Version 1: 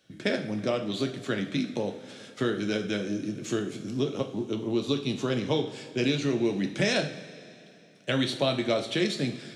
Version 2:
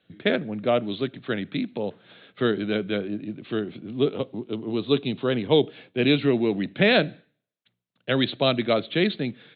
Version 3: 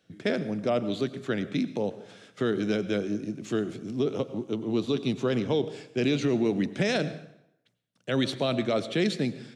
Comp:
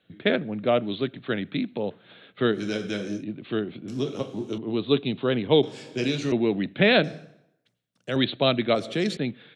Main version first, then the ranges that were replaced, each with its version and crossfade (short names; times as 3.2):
2
2.56–3.2 from 1, crossfade 0.10 s
3.88–4.58 from 1
5.63–6.32 from 1
7.04–8.16 from 3
8.75–9.17 from 3